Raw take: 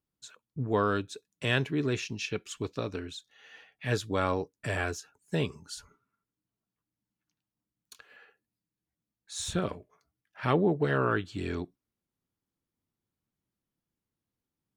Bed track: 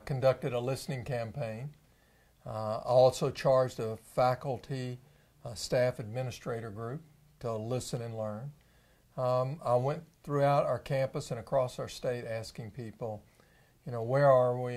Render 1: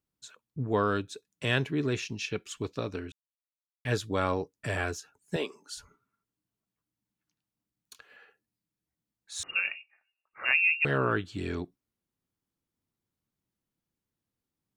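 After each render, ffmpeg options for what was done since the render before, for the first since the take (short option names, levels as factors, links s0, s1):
-filter_complex "[0:a]asettb=1/sr,asplit=3[s0][s1][s2];[s0]atrim=end=5.364[s3];[s1]atrim=start=5.36:end=5.76,asetpts=PTS-STARTPTS,afade=t=in:d=0.004:c=qsin,afade=t=out:st=0.396:d=0.004:c=qsin,highpass=f=300:w=0.5412,highpass=f=300:w=1.3066[s4];[s2]atrim=start=5.756[s5];[s3][s4]acrossfade=d=0.004:c1=hsin:c2=qsin[s6];[s6][s5]acrossfade=d=0.004:c1=qsin:c2=hsin,asettb=1/sr,asplit=3[s7][s8][s9];[s7]atrim=end=9.434[s10];[s8]atrim=start=9.43:end=10.85,asetpts=PTS-STARTPTS,afade=t=in:d=0.004:c=qsin,afade=t=out:st=1.416:d=0.004:c=qsin,lowpass=f=2500:t=q:w=0.5098,lowpass=f=2500:t=q:w=0.6013,lowpass=f=2500:t=q:w=0.9,lowpass=f=2500:t=q:w=2.563,afreqshift=-2900[s11];[s9]atrim=start=10.846[s12];[s10][s11]acrossfade=d=0.004:c1=hsin:c2=qsin[s13];[s13][s12]acrossfade=d=0.004:c1=qsin:c2=hsin,asplit=3[s14][s15][s16];[s14]atrim=end=3.12,asetpts=PTS-STARTPTS,afade=t=out:st=3.116:d=0.004:c=hsin[s17];[s15]atrim=start=3.12:end=3.85,asetpts=PTS-STARTPTS,volume=0[s18];[s16]atrim=start=3.85,asetpts=PTS-STARTPTS,afade=t=in:d=0.004:c=hsin[s19];[s17][s18][s19]concat=n=3:v=0:a=1"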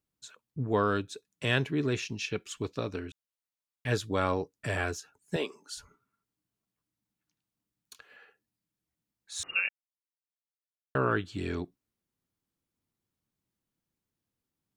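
-filter_complex "[0:a]asplit=3[s0][s1][s2];[s0]atrim=end=9.69,asetpts=PTS-STARTPTS,afade=t=out:st=9.686:d=0.004:c=hsin[s3];[s1]atrim=start=9.69:end=10.95,asetpts=PTS-STARTPTS,volume=0[s4];[s2]atrim=start=10.95,asetpts=PTS-STARTPTS,afade=t=in:d=0.004:c=hsin[s5];[s3][s4][s5]concat=n=3:v=0:a=1"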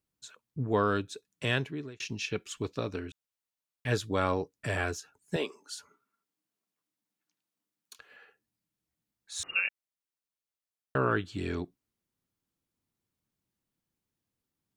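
-filter_complex "[0:a]asettb=1/sr,asplit=3[s0][s1][s2];[s0]atrim=end=5.494[s3];[s1]atrim=start=5.49:end=7.99,asetpts=PTS-STARTPTS,afade=t=in:d=0.004:c=qsin,afade=t=out:st=2.496:d=0.004:c=qsin,highpass=260[s4];[s2]atrim=start=7.986[s5];[s3][s4]acrossfade=d=0.004:c1=hsin:c2=qsin[s6];[s6][s5]acrossfade=d=0.004:c1=qsin:c2=hsin,asplit=2[s7][s8];[s7]atrim=end=2,asetpts=PTS-STARTPTS,afade=t=out:st=1.43:d=0.57[s9];[s8]atrim=start=2,asetpts=PTS-STARTPTS,afade=t=in:d=0.004:c=hsin[s10];[s9][s10]concat=n=2:v=0:a=1"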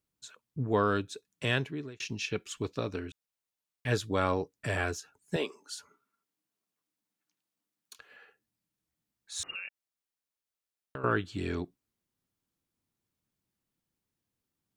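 -filter_complex "[0:a]asettb=1/sr,asplit=3[s0][s1][s2];[s0]atrim=end=9.544[s3];[s1]atrim=start=9.54:end=11.04,asetpts=PTS-STARTPTS,afade=t=in:d=0.004:c=qsin,afade=t=out:st=1.496:d=0.004:c=qsin,acompressor=threshold=0.01:ratio=3:attack=3.2:release=140:knee=1:detection=peak[s4];[s2]atrim=start=11.036[s5];[s3][s4]acrossfade=d=0.004:c1=hsin:c2=qsin[s6];[s6][s5]acrossfade=d=0.004:c1=qsin:c2=hsin"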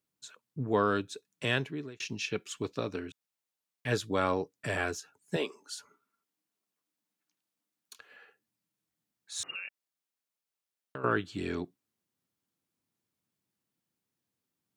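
-af "highpass=120"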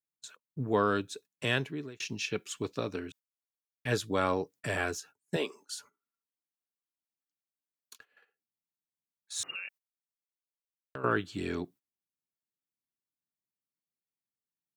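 -af "agate=range=0.141:threshold=0.00224:ratio=16:detection=peak,highshelf=f=11000:g=7"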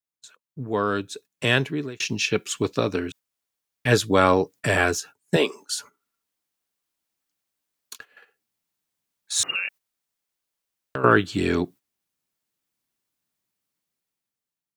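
-af "dynaudnorm=f=350:g=7:m=4.47"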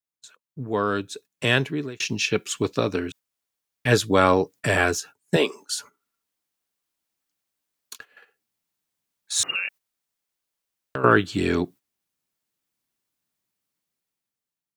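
-af anull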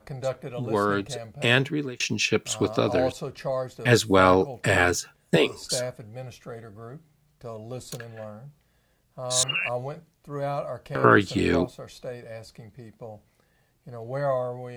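-filter_complex "[1:a]volume=0.75[s0];[0:a][s0]amix=inputs=2:normalize=0"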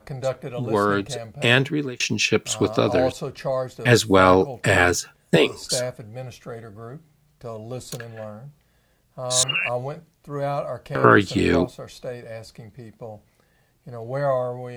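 -af "volume=1.5,alimiter=limit=0.891:level=0:latency=1"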